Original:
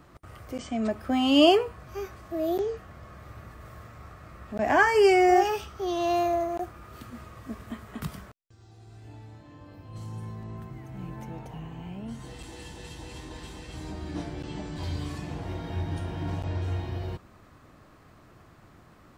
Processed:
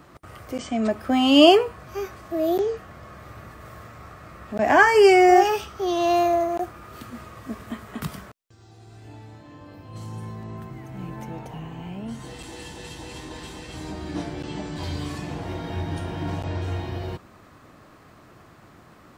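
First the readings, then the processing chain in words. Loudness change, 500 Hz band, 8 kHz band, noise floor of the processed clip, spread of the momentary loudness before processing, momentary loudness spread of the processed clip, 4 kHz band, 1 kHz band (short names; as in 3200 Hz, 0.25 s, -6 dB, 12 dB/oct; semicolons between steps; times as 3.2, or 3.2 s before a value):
+5.5 dB, +5.0 dB, +5.5 dB, -51 dBFS, 24 LU, 23 LU, +5.5 dB, +5.5 dB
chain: low shelf 81 Hz -10 dB; gain +5.5 dB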